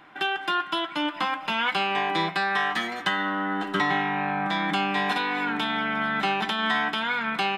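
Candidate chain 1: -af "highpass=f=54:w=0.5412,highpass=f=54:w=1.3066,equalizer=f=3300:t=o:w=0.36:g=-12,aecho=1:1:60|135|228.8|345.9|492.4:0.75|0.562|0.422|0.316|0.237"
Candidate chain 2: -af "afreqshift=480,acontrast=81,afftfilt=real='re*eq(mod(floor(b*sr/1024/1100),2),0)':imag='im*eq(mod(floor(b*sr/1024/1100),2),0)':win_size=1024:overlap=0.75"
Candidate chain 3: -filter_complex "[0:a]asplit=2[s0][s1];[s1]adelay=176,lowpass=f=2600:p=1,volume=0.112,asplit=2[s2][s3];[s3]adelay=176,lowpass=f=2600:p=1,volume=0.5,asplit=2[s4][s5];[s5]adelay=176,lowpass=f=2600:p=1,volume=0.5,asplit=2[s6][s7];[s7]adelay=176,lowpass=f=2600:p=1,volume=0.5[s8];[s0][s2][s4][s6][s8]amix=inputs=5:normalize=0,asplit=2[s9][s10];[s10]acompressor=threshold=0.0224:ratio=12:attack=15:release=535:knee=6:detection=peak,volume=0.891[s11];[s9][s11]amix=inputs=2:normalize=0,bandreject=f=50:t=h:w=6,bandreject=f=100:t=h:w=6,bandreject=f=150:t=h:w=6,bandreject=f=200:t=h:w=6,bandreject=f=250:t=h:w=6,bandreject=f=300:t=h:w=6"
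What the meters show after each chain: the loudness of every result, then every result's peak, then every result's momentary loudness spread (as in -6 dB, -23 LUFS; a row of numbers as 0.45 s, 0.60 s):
-22.5 LUFS, -22.5 LUFS, -23.5 LUFS; -10.0 dBFS, -9.0 dBFS, -11.0 dBFS; 3 LU, 5 LU, 3 LU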